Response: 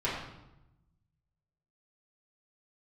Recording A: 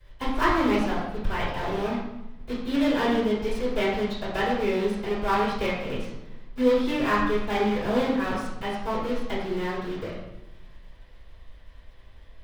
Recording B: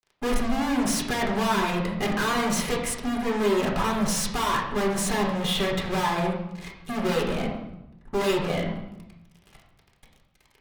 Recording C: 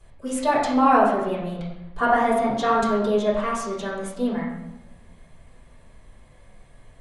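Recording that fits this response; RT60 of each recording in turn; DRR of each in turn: C; 0.90 s, 0.90 s, 0.90 s; -18.0 dB, -2.0 dB, -9.0 dB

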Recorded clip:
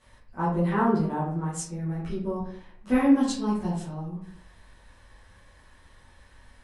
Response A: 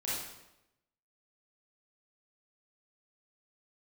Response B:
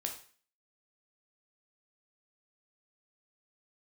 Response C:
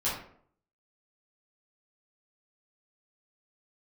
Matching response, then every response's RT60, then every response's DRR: C; 0.90 s, 0.45 s, 0.60 s; -8.5 dB, 2.0 dB, -10.0 dB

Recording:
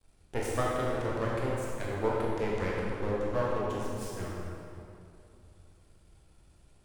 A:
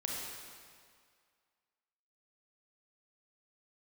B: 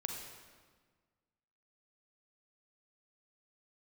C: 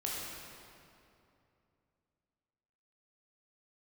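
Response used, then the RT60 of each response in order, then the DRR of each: C; 2.0 s, 1.5 s, 2.7 s; -3.0 dB, 2.0 dB, -5.0 dB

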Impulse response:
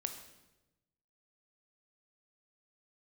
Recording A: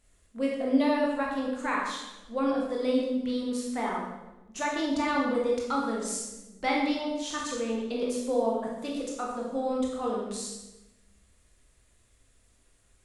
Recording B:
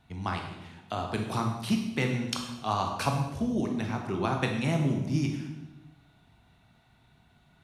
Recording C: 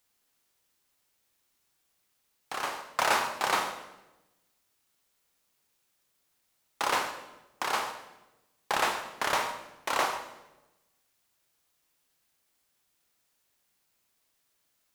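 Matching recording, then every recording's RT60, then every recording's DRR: C; 1.0 s, 1.0 s, 1.0 s; -3.0 dB, 2.0 dB, 6.0 dB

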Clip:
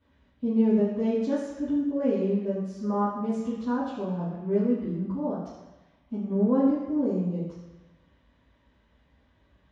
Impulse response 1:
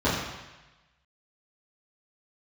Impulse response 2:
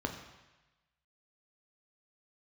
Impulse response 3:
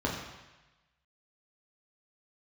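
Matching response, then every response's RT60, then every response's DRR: 1; 1.1 s, 1.1 s, 1.1 s; -12.0 dB, 3.0 dB, -3.5 dB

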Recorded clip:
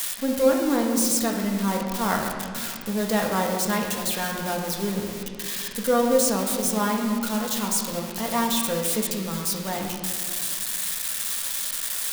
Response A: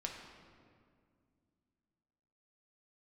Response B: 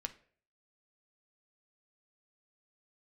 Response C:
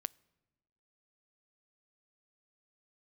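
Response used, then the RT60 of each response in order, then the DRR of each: A; 2.2 s, 0.50 s, 1.2 s; 0.0 dB, 6.5 dB, 23.5 dB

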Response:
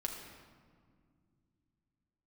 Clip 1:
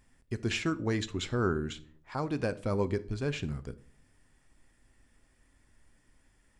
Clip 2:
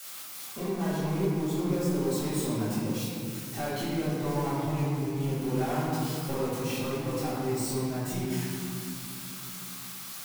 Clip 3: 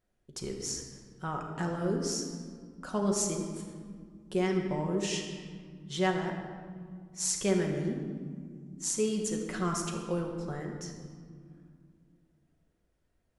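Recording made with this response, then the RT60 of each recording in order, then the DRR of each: 3; no single decay rate, 2.7 s, 2.0 s; 13.0 dB, -13.0 dB, 0.5 dB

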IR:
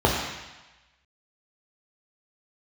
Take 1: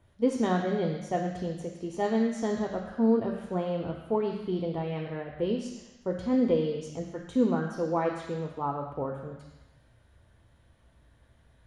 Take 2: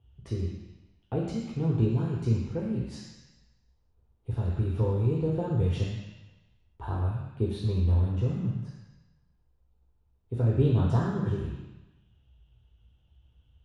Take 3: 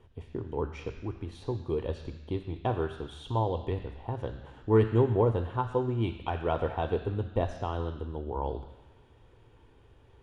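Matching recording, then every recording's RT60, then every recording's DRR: 2; 1.1 s, 1.1 s, 1.1 s; 4.0 dB, -2.5 dB, 9.5 dB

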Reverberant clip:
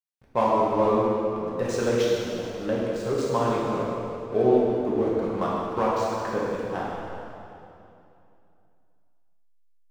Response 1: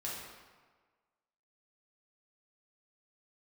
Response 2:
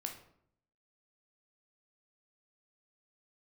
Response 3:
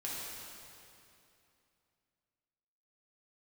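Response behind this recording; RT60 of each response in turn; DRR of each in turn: 3; 1.5 s, 0.65 s, 2.7 s; -6.0 dB, 3.0 dB, -6.5 dB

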